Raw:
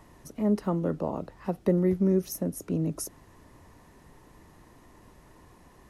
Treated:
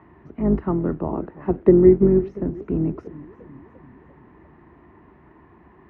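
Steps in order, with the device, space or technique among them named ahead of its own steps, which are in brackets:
sub-octave bass pedal (sub-octave generator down 2 octaves, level +1 dB; loudspeaker in its box 65–2,200 Hz, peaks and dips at 110 Hz −8 dB, 360 Hz +6 dB, 530 Hz −9 dB)
0:01.12–0:02.07: parametric band 390 Hz +6 dB 1.1 octaves
feedback echo with a swinging delay time 347 ms, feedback 57%, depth 137 cents, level −20 dB
level +4.5 dB

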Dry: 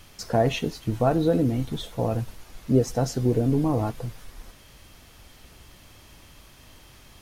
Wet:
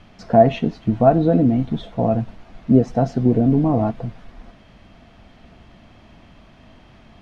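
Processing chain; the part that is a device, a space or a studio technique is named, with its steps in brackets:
inside a cardboard box (low-pass filter 2,900 Hz 12 dB per octave; hollow resonant body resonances 210/670 Hz, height 10 dB, ringing for 30 ms)
level +1.5 dB

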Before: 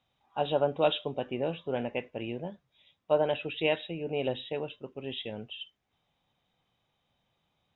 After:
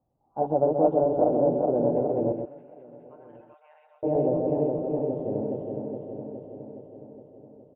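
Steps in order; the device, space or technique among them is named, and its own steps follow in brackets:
feedback delay that plays each chunk backwards 208 ms, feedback 79%, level −2 dB
0:02.32–0:04.03: inverse Chebyshev high-pass filter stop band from 340 Hz, stop band 70 dB
under water (low-pass filter 780 Hz 24 dB per octave; parametric band 310 Hz +5 dB 0.25 octaves)
single-tap delay 131 ms −7 dB
single-tap delay 1,087 ms −23.5 dB
level +3.5 dB

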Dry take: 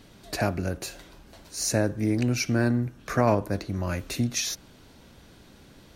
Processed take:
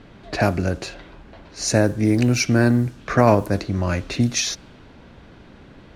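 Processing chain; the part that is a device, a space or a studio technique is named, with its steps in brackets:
0:00.94–0:01.56: low-pass filter 5,300 Hz
cassette deck with a dynamic noise filter (white noise bed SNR 31 dB; low-pass that shuts in the quiet parts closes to 2,300 Hz, open at −19.5 dBFS)
level +7 dB

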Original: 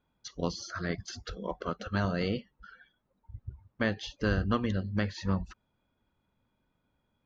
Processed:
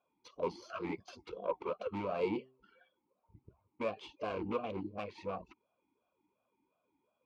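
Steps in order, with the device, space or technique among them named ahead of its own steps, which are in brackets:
talk box (tube saturation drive 32 dB, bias 0.7; formant filter swept between two vowels a-u 2.8 Hz)
0:02.35–0:03.44: hum removal 130.1 Hz, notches 4
level +14 dB

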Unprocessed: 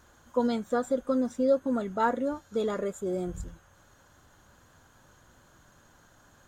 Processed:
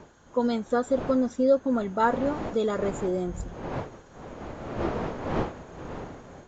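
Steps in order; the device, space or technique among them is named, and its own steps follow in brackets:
smartphone video outdoors (wind on the microphone 610 Hz −39 dBFS; automatic gain control gain up to 3 dB; AAC 64 kbit/s 16,000 Hz)

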